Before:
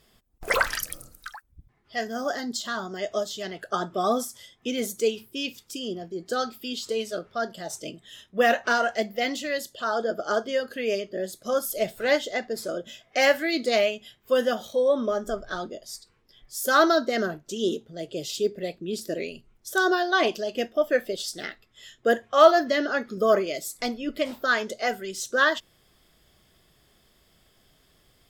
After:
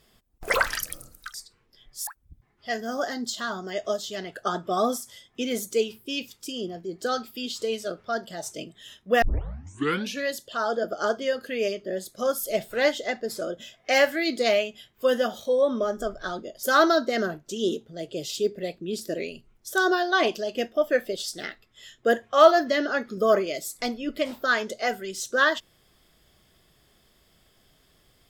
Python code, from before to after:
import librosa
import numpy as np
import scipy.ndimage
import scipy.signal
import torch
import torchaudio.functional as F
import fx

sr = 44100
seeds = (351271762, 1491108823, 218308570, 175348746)

y = fx.edit(x, sr, fx.tape_start(start_s=8.49, length_s=1.04),
    fx.move(start_s=15.9, length_s=0.73, to_s=1.34), tone=tone)